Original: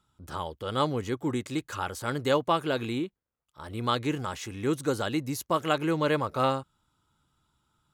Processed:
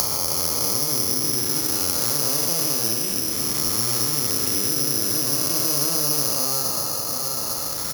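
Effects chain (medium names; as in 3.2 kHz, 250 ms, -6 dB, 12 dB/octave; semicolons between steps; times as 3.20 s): spectral blur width 744 ms; elliptic low-pass 4 kHz; band-stop 1.5 kHz, Q 18; doubling 35 ms -3 dB; delay 728 ms -23 dB; upward compressor, threshold -39 dBFS; careless resampling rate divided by 8×, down none, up zero stuff; three bands compressed up and down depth 100%; trim +2 dB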